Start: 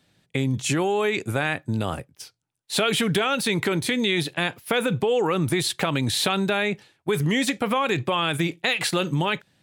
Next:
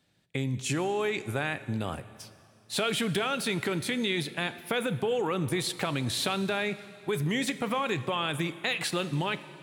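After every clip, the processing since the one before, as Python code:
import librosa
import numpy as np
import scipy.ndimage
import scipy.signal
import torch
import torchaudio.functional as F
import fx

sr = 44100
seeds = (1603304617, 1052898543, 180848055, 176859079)

y = fx.rev_plate(x, sr, seeds[0], rt60_s=2.6, hf_ratio=0.95, predelay_ms=0, drr_db=13.5)
y = y * 10.0 ** (-6.5 / 20.0)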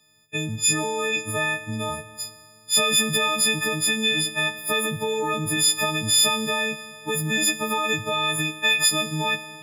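y = fx.freq_snap(x, sr, grid_st=6)
y = y * 10.0 ** (1.5 / 20.0)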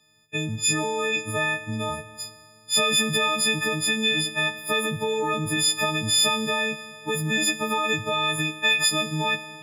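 y = fx.high_shelf(x, sr, hz=9200.0, db=-8.5)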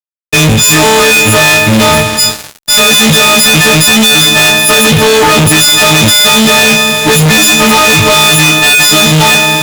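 y = fx.doubler(x, sr, ms=31.0, db=-11)
y = fx.fuzz(y, sr, gain_db=46.0, gate_db=-46.0)
y = y * 10.0 ** (8.5 / 20.0)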